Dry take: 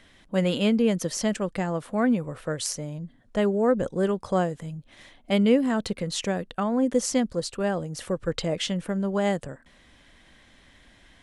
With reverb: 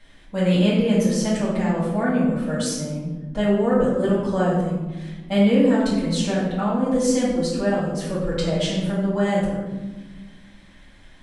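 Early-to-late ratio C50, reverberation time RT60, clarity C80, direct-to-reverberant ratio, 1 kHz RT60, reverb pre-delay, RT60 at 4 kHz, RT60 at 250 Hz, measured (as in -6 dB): 0.5 dB, 1.3 s, 3.5 dB, -11.0 dB, 1.1 s, 4 ms, 0.70 s, 2.4 s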